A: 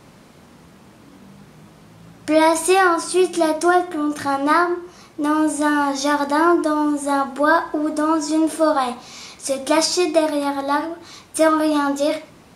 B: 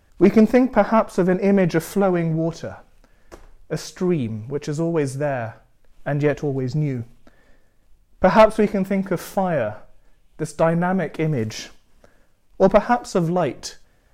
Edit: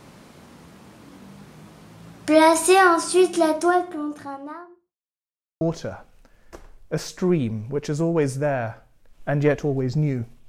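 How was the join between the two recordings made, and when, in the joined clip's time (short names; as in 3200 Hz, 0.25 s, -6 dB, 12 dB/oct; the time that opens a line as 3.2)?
A
3–4.98 studio fade out
4.98–5.61 mute
5.61 switch to B from 2.4 s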